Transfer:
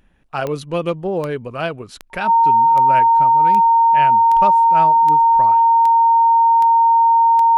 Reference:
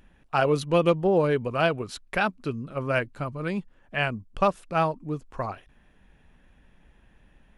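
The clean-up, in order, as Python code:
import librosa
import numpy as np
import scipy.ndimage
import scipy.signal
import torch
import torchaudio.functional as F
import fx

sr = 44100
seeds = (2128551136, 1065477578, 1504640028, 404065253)

y = fx.fix_declick_ar(x, sr, threshold=10.0)
y = fx.notch(y, sr, hz=920.0, q=30.0)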